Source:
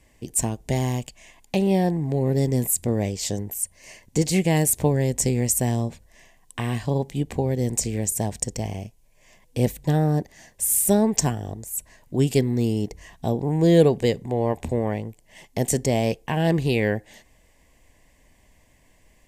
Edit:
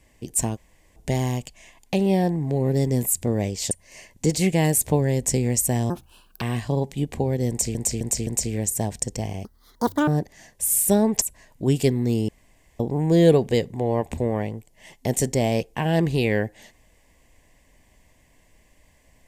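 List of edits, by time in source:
0.57 s: insert room tone 0.39 s
3.32–3.63 s: delete
5.82–6.60 s: speed 151%
7.67–7.93 s: loop, 4 plays
8.85–10.07 s: speed 194%
11.21–11.73 s: delete
12.80–13.31 s: room tone

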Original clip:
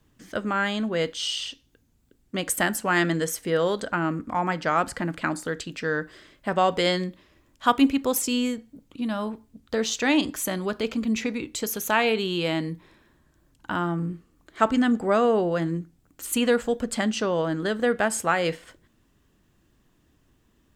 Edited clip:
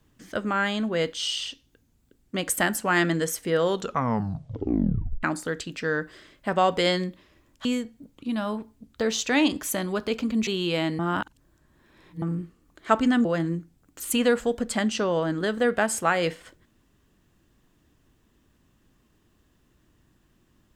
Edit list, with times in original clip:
3.66 s: tape stop 1.57 s
7.65–8.38 s: delete
11.20–12.18 s: delete
12.70–13.93 s: reverse
14.96–15.47 s: delete

